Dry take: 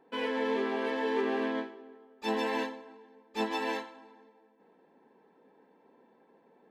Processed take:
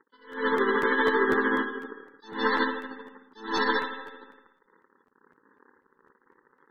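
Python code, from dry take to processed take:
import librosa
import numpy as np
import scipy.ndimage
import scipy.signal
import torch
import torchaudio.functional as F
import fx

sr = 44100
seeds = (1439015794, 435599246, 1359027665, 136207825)

y = fx.tracing_dist(x, sr, depth_ms=0.1)
y = fx.high_shelf(y, sr, hz=5800.0, db=10.0)
y = fx.echo_feedback(y, sr, ms=220, feedback_pct=36, wet_db=-21.5)
y = y * (1.0 - 0.56 / 2.0 + 0.56 / 2.0 * np.cos(2.0 * np.pi * 13.0 * (np.arange(len(y)) / sr)))
y = fx.leveller(y, sr, passes=3)
y = fx.transient(y, sr, attack_db=10, sustain_db=-6)
y = fx.bass_treble(y, sr, bass_db=-12, treble_db=-7)
y = fx.fixed_phaser(y, sr, hz=2500.0, stages=6)
y = fx.rev_spring(y, sr, rt60_s=1.1, pass_ms=(54,), chirp_ms=40, drr_db=7.0)
y = fx.spec_topn(y, sr, count=64)
y = fx.buffer_crackle(y, sr, first_s=0.31, period_s=0.25, block=512, kind='repeat')
y = fx.attack_slew(y, sr, db_per_s=130.0)
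y = y * librosa.db_to_amplitude(7.5)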